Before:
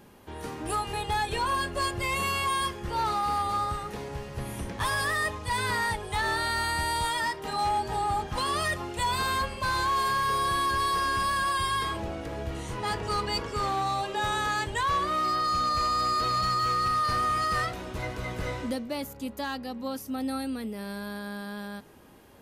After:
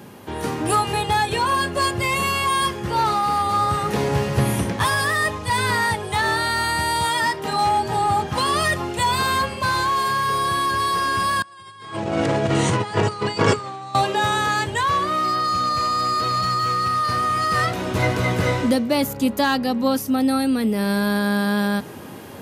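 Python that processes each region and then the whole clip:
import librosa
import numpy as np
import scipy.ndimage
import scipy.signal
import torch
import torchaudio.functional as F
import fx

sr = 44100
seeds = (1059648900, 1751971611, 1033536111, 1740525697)

y = fx.chain(x, sr, fx.ellip_bandpass(low_hz=100.0, high_hz=8600.0, order=3, stop_db=50),
    fx.over_compress(threshold_db=-37.0, ratio=-0.5), at=(11.42, 13.95))
y = scipy.signal.sosfilt(scipy.signal.butter(4, 95.0, 'highpass', fs=sr, output='sos'), y)
y = fx.low_shelf(y, sr, hz=190.0, db=4.5)
y = fx.rider(y, sr, range_db=10, speed_s=0.5)
y = F.gain(torch.from_numpy(y), 8.0).numpy()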